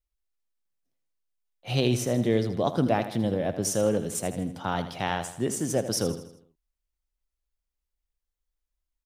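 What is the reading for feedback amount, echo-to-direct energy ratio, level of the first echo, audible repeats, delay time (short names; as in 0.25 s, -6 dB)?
47%, -10.5 dB, -11.5 dB, 4, 80 ms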